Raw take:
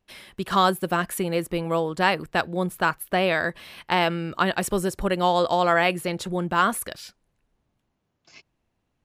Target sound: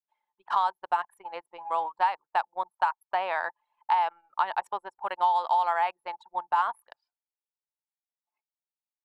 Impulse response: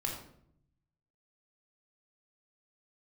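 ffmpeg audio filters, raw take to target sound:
-filter_complex "[0:a]highpass=frequency=880:width_type=q:width=8.6,anlmdn=398,acrossover=split=2200|5400[link_01][link_02][link_03];[link_01]acompressor=threshold=-15dB:ratio=4[link_04];[link_02]acompressor=threshold=-37dB:ratio=4[link_05];[link_03]acompressor=threshold=-59dB:ratio=4[link_06];[link_04][link_05][link_06]amix=inputs=3:normalize=0,volume=-7.5dB"

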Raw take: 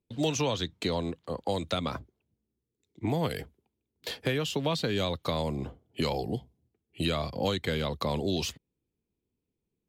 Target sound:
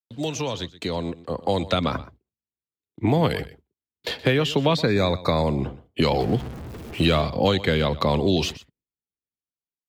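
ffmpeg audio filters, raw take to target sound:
ffmpeg -i in.wav -filter_complex "[0:a]asettb=1/sr,asplit=3[link_01][link_02][link_03];[link_01]atrim=end=6.204[link_04];[link_02]atrim=start=6.2:end=7.21,asetpts=PTS-STARTPTS,afade=type=in:duration=0.004:curve=qsin,afade=type=out:start_time=1.006:duration=0.004:curve=qsin,aeval=exprs='val(0)+0.5*0.0112*sgn(val(0))':channel_layout=same[link_05];[link_03]atrim=start=7.206[link_06];[link_04][link_05]acrossfade=duration=0.004:curve1=hsin:curve2=qsin[link_07];[link_07][link_06]acrossfade=duration=0.004:curve1=qsin:curve2=hsin,agate=range=-29dB:threshold=-58dB:ratio=16:detection=peak,acrossover=split=4400[link_08][link_09];[link_08]dynaudnorm=framelen=840:gausssize=3:maxgain=9dB[link_10];[link_10][link_09]amix=inputs=2:normalize=0,asettb=1/sr,asplit=3[link_11][link_12][link_13];[link_11]atrim=end=4.774[link_14];[link_12]atrim=start=4.77:end=5.47,asetpts=PTS-STARTPTS,afade=type=in:duration=0.004:curve=qsin,afade=type=out:start_time=0.696:duration=0.004:curve=qsin,asuperstop=centerf=3000:order=8:qfactor=3[link_15];[link_13]atrim=start=5.466[link_16];[link_14][link_15]acrossfade=duration=0.004:curve1=hsin:curve2=qsin[link_17];[link_17][link_16]acrossfade=duration=0.004:curve1=qsin:curve2=hsin,asplit=2[link_18][link_19];[link_19]aecho=0:1:123:0.133[link_20];[link_18][link_20]amix=inputs=2:normalize=0" out.wav

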